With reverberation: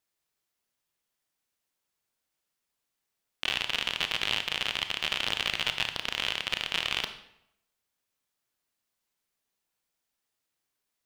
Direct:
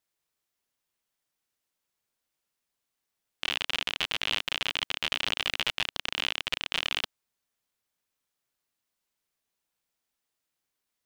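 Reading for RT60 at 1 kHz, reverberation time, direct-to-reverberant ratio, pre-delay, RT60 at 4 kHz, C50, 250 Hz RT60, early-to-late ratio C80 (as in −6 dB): 0.80 s, 0.80 s, 8.0 dB, 25 ms, 0.60 s, 10.5 dB, 0.80 s, 13.0 dB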